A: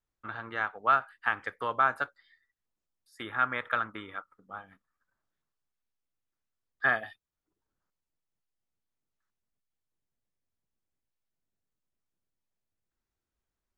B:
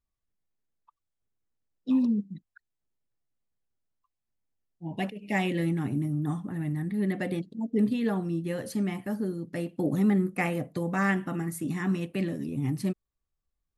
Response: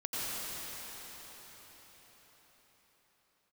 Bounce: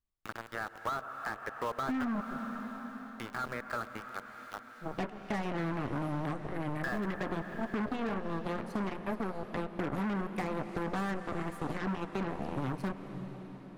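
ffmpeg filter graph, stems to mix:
-filter_complex "[0:a]aeval=exprs='val(0)*gte(abs(val(0)),0.02)':channel_layout=same,volume=2dB,asplit=2[link_01][link_02];[link_02]volume=-19.5dB[link_03];[1:a]lowpass=frequency=3100:poles=1,alimiter=limit=-19dB:level=0:latency=1:release=309,aeval=exprs='0.112*(cos(1*acos(clip(val(0)/0.112,-1,1)))-cos(1*PI/2))+0.00708*(cos(6*acos(clip(val(0)/0.112,-1,1)))-cos(6*PI/2))+0.0251*(cos(7*acos(clip(val(0)/0.112,-1,1)))-cos(7*PI/2))+0.0141*(cos(8*acos(clip(val(0)/0.112,-1,1)))-cos(8*PI/2))':channel_layout=same,volume=0.5dB,asplit=2[link_04][link_05];[link_05]volume=-18.5dB[link_06];[2:a]atrim=start_sample=2205[link_07];[link_03][link_06]amix=inputs=2:normalize=0[link_08];[link_08][link_07]afir=irnorm=-1:irlink=0[link_09];[link_01][link_04][link_09]amix=inputs=3:normalize=0,asoftclip=type=hard:threshold=-22.5dB,acrossover=split=760|2000[link_10][link_11][link_12];[link_10]acompressor=threshold=-33dB:ratio=4[link_13];[link_11]acompressor=threshold=-39dB:ratio=4[link_14];[link_12]acompressor=threshold=-54dB:ratio=4[link_15];[link_13][link_14][link_15]amix=inputs=3:normalize=0"

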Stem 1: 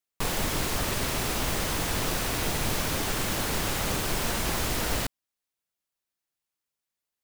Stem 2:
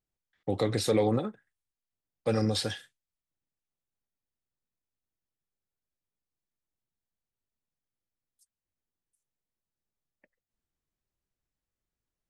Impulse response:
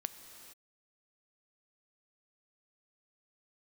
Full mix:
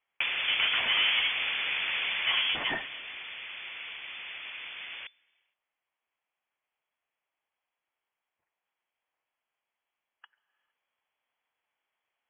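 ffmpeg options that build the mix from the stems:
-filter_complex "[0:a]acrossover=split=150|1300[link_01][link_02][link_03];[link_01]acompressor=threshold=-44dB:ratio=4[link_04];[link_02]acompressor=threshold=-37dB:ratio=4[link_05];[link_03]acompressor=threshold=-42dB:ratio=4[link_06];[link_04][link_05][link_06]amix=inputs=3:normalize=0,volume=-0.5dB,afade=type=out:start_time=2.2:duration=0.45:silence=0.298538,asplit=2[link_07][link_08];[link_08]volume=-18dB[link_09];[1:a]highpass=140,equalizer=frequency=2700:width=2.4:gain=12,asoftclip=type=hard:threshold=-31.5dB,volume=-1.5dB,asplit=2[link_10][link_11];[link_11]volume=-6.5dB[link_12];[2:a]atrim=start_sample=2205[link_13];[link_09][link_12]amix=inputs=2:normalize=0[link_14];[link_14][link_13]afir=irnorm=-1:irlink=0[link_15];[link_07][link_10][link_15]amix=inputs=3:normalize=0,equalizer=frequency=1200:width_type=o:width=1.7:gain=12,lowpass=frequency=3000:width_type=q:width=0.5098,lowpass=frequency=3000:width_type=q:width=0.6013,lowpass=frequency=3000:width_type=q:width=0.9,lowpass=frequency=3000:width_type=q:width=2.563,afreqshift=-3500"

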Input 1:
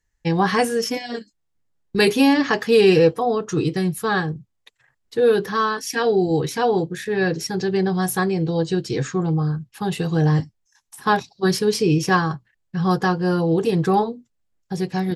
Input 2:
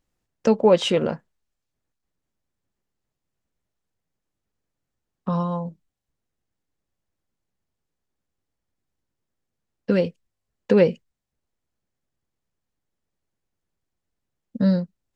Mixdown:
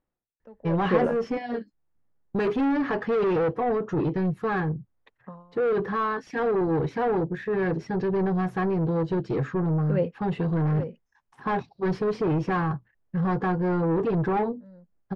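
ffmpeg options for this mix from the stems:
ffmpeg -i stem1.wav -i stem2.wav -filter_complex "[0:a]asoftclip=type=tanh:threshold=-22dB,adelay=400,volume=1dB[link_01];[1:a]lowshelf=frequency=190:gain=-7.5,aeval=exprs='0.299*(abs(mod(val(0)/0.299+3,4)-2)-1)':channel_layout=same,aeval=exprs='val(0)*pow(10,-29*(0.5-0.5*cos(2*PI*0.99*n/s))/20)':channel_layout=same,volume=0.5dB[link_02];[link_01][link_02]amix=inputs=2:normalize=0,lowpass=1500" out.wav

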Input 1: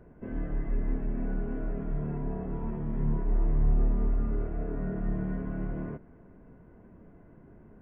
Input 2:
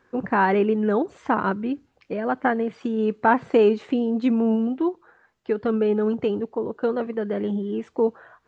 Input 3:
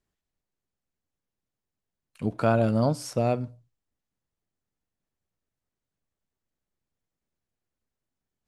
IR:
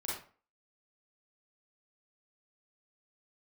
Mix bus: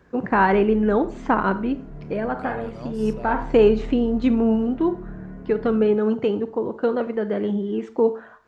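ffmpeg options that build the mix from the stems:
-filter_complex "[0:a]highpass=41,volume=-4dB[link_01];[1:a]volume=1dB,asplit=2[link_02][link_03];[link_03]volume=-13dB[link_04];[2:a]equalizer=frequency=2000:width=0.32:gain=7,volume=-16dB,asplit=2[link_05][link_06];[link_06]apad=whole_len=373578[link_07];[link_02][link_07]sidechaincompress=threshold=-41dB:ratio=8:attack=21:release=328[link_08];[3:a]atrim=start_sample=2205[link_09];[link_04][link_09]afir=irnorm=-1:irlink=0[link_10];[link_01][link_08][link_05][link_10]amix=inputs=4:normalize=0"

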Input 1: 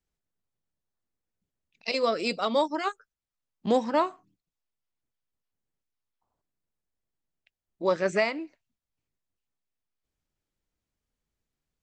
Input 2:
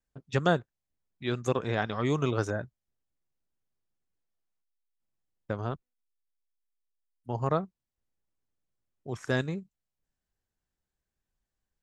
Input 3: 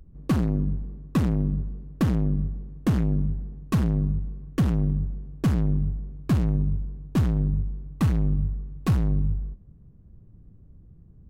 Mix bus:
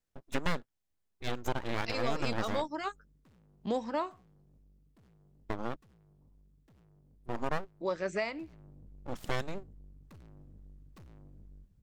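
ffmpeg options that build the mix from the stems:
ffmpeg -i stem1.wav -i stem2.wav -i stem3.wav -filter_complex "[0:a]volume=-6dB[link_01];[1:a]aeval=exprs='abs(val(0))':channel_layout=same,volume=0dB[link_02];[2:a]equalizer=frequency=4000:width=0.55:gain=5,alimiter=limit=-24dB:level=0:latency=1:release=202,aeval=exprs='(tanh(79.4*val(0)+0.45)-tanh(0.45))/79.4':channel_layout=same,adelay=2100,volume=-13dB,afade=type=in:start_time=8.25:duration=0.4:silence=0.334965[link_03];[link_01][link_02][link_03]amix=inputs=3:normalize=0,acompressor=threshold=-32dB:ratio=1.5" out.wav

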